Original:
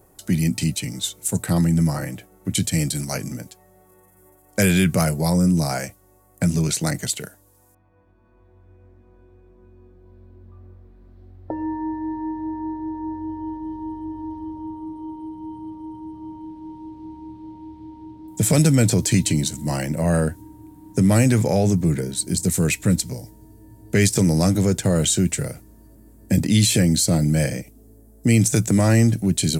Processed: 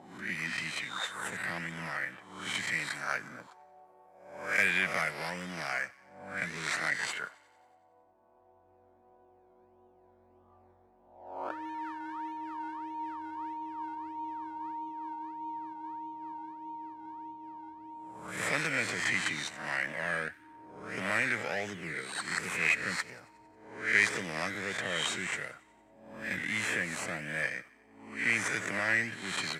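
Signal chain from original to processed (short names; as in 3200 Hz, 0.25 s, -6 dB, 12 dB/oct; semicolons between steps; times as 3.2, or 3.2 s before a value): spectral swells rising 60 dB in 0.70 s; 26.33–27.43 bell 4100 Hz -14.5 dB 0.62 oct; in parallel at -7.5 dB: decimation with a swept rate 19×, swing 60% 1.6 Hz; on the sum: auto-wah 740–1900 Hz, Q 3.9, up, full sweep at -16.5 dBFS; on a send: thin delay 91 ms, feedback 61%, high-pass 1700 Hz, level -21.5 dB; on the sum: gain +2.5 dB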